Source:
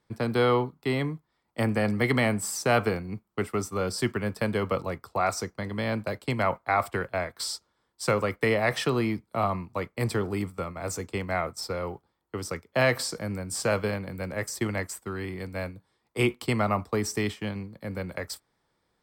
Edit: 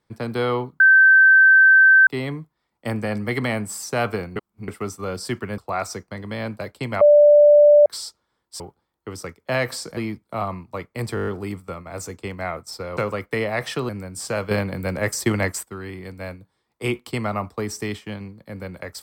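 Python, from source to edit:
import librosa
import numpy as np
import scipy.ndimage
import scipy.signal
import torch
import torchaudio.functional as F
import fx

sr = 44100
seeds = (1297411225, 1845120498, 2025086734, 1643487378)

y = fx.edit(x, sr, fx.insert_tone(at_s=0.8, length_s=1.27, hz=1550.0, db=-8.5),
    fx.reverse_span(start_s=3.09, length_s=0.32),
    fx.cut(start_s=4.31, length_s=0.74),
    fx.bleep(start_s=6.48, length_s=0.85, hz=589.0, db=-8.0),
    fx.swap(start_s=8.07, length_s=0.92, other_s=11.87, other_length_s=1.37),
    fx.stutter(start_s=10.17, slice_s=0.02, count=7),
    fx.clip_gain(start_s=13.86, length_s=1.12, db=8.0), tone=tone)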